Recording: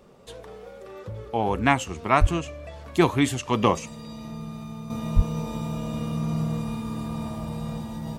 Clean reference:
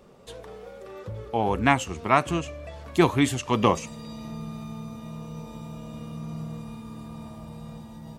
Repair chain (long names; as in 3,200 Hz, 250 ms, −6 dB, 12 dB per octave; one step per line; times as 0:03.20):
high-pass at the plosives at 0:02.20/0:05.15
level 0 dB, from 0:04.90 −8.5 dB